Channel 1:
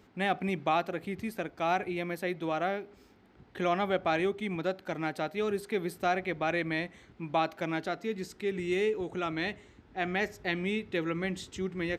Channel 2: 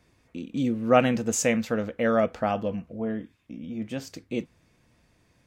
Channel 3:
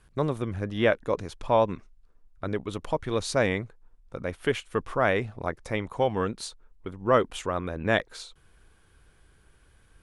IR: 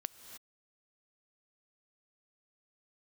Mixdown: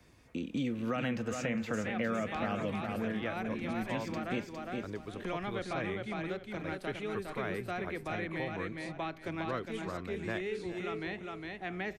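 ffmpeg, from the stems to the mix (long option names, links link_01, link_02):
-filter_complex "[0:a]adelay=1650,volume=-5dB,asplit=2[link_01][link_02];[link_02]volume=-4.5dB[link_03];[1:a]alimiter=limit=-16dB:level=0:latency=1:release=39,volume=0.5dB,asplit=3[link_04][link_05][link_06];[link_05]volume=-12.5dB[link_07];[link_06]volume=-7dB[link_08];[2:a]adelay=2400,volume=-10dB,asplit=2[link_09][link_10];[link_10]volume=-17.5dB[link_11];[3:a]atrim=start_sample=2205[link_12];[link_07][link_12]afir=irnorm=-1:irlink=0[link_13];[link_03][link_08][link_11]amix=inputs=3:normalize=0,aecho=0:1:408|816|1224|1632:1|0.23|0.0529|0.0122[link_14];[link_01][link_04][link_09][link_13][link_14]amix=inputs=5:normalize=0,acrossover=split=120|400|1200|3100[link_15][link_16][link_17][link_18][link_19];[link_15]acompressor=threshold=-47dB:ratio=4[link_20];[link_16]acompressor=threshold=-37dB:ratio=4[link_21];[link_17]acompressor=threshold=-43dB:ratio=4[link_22];[link_18]acompressor=threshold=-38dB:ratio=4[link_23];[link_19]acompressor=threshold=-57dB:ratio=4[link_24];[link_20][link_21][link_22][link_23][link_24]amix=inputs=5:normalize=0"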